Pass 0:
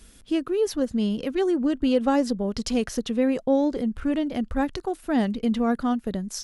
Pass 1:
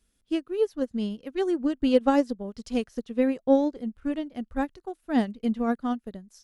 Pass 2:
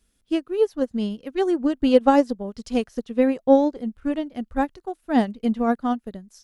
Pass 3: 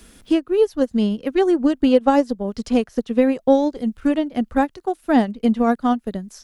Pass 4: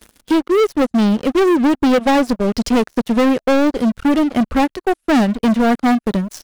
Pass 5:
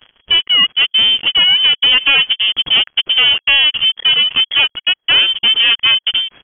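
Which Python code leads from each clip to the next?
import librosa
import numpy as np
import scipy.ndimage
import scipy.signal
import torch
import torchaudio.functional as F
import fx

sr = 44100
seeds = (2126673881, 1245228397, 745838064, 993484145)

y1 = fx.upward_expand(x, sr, threshold_db=-33.0, expansion=2.5)
y1 = y1 * 10.0 ** (3.0 / 20.0)
y2 = fx.dynamic_eq(y1, sr, hz=800.0, q=1.3, threshold_db=-39.0, ratio=4.0, max_db=4)
y2 = y2 * 10.0 ** (3.5 / 20.0)
y3 = fx.band_squash(y2, sr, depth_pct=70)
y3 = y3 * 10.0 ** (3.5 / 20.0)
y4 = fx.leveller(y3, sr, passes=5)
y4 = y4 * 10.0 ** (-6.5 / 20.0)
y5 = fx.freq_invert(y4, sr, carrier_hz=3300)
y5 = y5 * 10.0 ** (2.0 / 20.0)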